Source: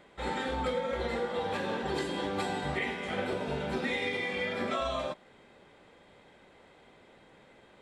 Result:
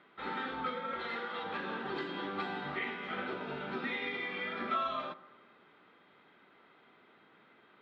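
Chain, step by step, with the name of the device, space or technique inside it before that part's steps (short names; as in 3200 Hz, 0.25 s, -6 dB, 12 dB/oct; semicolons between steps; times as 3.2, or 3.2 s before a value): kitchen radio (speaker cabinet 190–3900 Hz, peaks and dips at 540 Hz -9 dB, 820 Hz -3 dB, 1300 Hz +9 dB); 0.99–1.44 tilt shelf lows -5 dB; analogue delay 86 ms, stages 1024, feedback 65%, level -18 dB; gain -4 dB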